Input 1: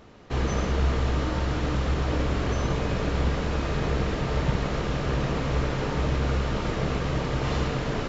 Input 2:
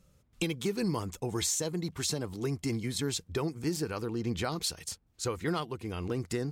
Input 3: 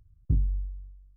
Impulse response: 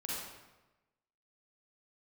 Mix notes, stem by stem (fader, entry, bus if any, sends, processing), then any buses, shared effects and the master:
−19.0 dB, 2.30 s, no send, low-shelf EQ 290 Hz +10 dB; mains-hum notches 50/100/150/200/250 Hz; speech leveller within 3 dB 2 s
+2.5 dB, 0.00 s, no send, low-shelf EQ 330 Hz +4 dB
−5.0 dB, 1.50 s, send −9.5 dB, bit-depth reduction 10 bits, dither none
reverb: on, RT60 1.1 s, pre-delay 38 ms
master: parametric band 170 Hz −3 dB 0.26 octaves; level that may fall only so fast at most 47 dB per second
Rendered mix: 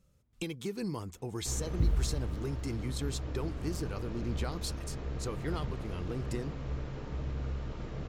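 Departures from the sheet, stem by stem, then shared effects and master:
stem 1: entry 2.30 s → 1.15 s
stem 2 +2.5 dB → −7.0 dB
master: missing level that may fall only so fast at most 47 dB per second

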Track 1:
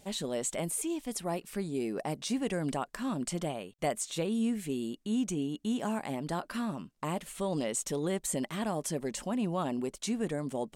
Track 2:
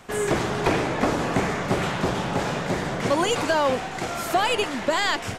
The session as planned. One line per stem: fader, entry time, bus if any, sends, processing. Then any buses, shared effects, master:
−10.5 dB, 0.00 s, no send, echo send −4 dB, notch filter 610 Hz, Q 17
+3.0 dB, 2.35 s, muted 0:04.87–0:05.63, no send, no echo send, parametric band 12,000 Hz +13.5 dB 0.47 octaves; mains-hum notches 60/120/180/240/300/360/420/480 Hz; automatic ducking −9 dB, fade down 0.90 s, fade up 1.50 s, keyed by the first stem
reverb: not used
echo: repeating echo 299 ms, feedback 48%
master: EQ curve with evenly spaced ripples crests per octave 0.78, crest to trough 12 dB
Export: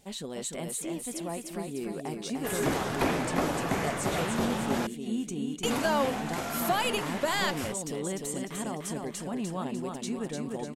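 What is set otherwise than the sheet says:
stem 1 −10.5 dB → −2.5 dB
master: missing EQ curve with evenly spaced ripples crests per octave 0.78, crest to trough 12 dB

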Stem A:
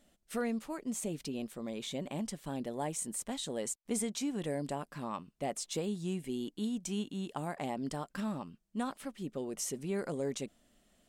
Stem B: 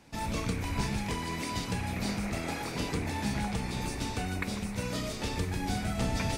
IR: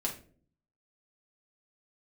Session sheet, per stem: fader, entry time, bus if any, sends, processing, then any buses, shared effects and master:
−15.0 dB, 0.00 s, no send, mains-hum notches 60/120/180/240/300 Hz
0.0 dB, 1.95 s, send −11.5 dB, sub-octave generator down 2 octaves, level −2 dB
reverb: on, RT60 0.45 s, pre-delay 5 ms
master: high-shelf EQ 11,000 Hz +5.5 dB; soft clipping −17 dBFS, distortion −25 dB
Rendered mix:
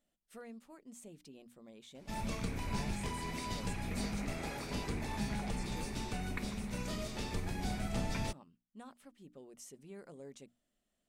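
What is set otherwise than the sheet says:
stem B 0.0 dB → −8.5 dB
master: missing high-shelf EQ 11,000 Hz +5.5 dB

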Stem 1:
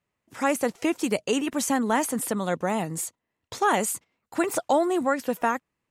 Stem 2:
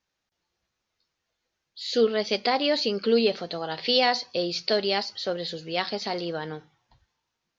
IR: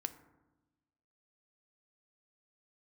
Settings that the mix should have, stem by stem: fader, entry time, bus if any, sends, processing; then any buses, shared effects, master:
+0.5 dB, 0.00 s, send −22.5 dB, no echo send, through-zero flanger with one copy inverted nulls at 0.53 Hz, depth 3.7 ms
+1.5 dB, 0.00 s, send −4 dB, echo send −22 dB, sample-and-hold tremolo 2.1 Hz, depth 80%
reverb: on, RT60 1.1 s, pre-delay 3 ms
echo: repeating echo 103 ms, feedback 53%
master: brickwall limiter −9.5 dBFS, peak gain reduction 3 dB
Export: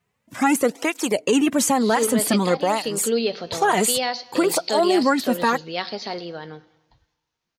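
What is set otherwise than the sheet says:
stem 1 +0.5 dB → +9.5 dB
stem 2: send off

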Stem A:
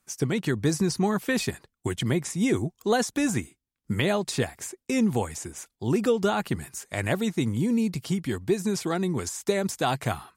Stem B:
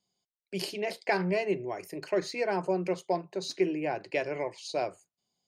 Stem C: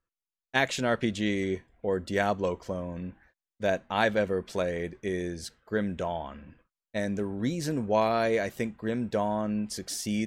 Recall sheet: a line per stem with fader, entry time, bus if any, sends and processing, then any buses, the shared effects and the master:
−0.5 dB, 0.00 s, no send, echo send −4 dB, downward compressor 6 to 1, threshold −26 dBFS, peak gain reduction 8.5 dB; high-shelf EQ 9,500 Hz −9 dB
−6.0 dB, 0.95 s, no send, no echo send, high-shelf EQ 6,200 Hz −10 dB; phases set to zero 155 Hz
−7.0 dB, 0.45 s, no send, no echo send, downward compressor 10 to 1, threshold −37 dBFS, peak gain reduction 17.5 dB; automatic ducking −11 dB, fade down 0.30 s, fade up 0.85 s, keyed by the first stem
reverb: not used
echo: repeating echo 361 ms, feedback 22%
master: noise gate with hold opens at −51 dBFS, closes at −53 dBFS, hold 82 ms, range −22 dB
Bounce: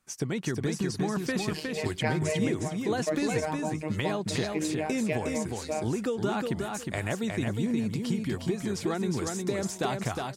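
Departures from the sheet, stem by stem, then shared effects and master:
stem B −6.0 dB → +1.0 dB
stem C −7.0 dB → −0.5 dB
master: missing noise gate with hold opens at −51 dBFS, closes at −53 dBFS, hold 82 ms, range −22 dB

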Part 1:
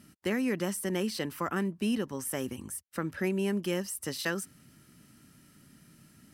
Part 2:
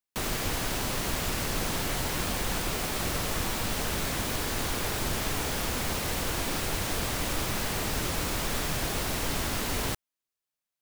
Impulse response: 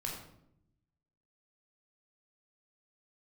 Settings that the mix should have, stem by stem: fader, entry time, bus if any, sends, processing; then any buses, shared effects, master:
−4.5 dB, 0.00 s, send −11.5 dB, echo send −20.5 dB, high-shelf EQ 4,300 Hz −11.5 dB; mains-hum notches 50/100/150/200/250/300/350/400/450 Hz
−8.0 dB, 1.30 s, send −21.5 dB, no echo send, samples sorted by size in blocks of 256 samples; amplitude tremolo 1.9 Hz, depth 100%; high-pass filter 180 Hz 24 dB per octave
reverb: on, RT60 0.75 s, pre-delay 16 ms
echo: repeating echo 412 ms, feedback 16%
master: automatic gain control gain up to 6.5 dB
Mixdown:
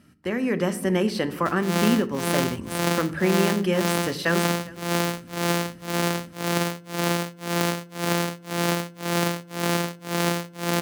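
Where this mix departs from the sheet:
stem 1 −4.5 dB → +2.0 dB
stem 2 −8.0 dB → +3.5 dB

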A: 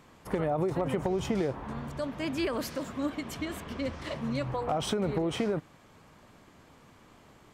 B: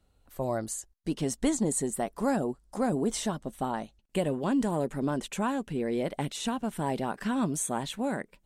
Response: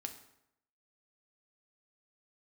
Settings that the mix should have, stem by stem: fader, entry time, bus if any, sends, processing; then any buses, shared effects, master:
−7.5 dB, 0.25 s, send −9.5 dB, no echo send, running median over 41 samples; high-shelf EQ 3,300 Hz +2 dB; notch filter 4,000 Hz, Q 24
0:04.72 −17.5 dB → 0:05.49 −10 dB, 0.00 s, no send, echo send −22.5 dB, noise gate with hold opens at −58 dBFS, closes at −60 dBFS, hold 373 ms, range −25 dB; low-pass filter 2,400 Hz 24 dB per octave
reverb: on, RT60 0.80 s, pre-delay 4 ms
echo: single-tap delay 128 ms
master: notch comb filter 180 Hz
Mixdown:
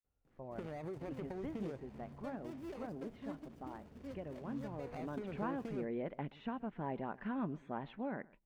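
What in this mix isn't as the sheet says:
stem A −7.5 dB → −16.0 dB
master: missing notch comb filter 180 Hz

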